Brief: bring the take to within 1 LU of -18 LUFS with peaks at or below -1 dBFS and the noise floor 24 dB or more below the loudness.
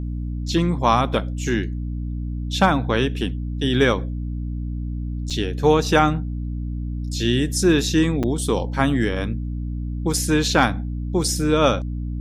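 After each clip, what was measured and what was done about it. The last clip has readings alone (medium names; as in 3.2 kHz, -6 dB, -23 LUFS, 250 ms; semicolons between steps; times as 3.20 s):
dropouts 2; longest dropout 6.2 ms; hum 60 Hz; highest harmonic 300 Hz; hum level -24 dBFS; loudness -22.0 LUFS; peak level -2.0 dBFS; loudness target -18.0 LUFS
-> interpolate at 5.30/8.23 s, 6.2 ms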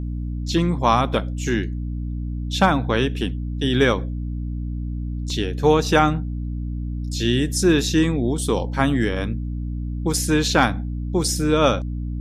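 dropouts 0; hum 60 Hz; highest harmonic 300 Hz; hum level -24 dBFS
-> de-hum 60 Hz, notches 5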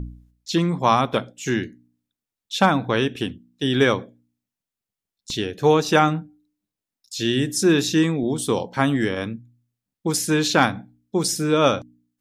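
hum not found; loudness -21.5 LUFS; peak level -2.5 dBFS; loudness target -18.0 LUFS
-> trim +3.5 dB; peak limiter -1 dBFS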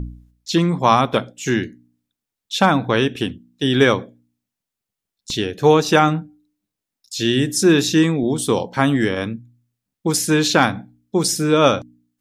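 loudness -18.0 LUFS; peak level -1.0 dBFS; noise floor -85 dBFS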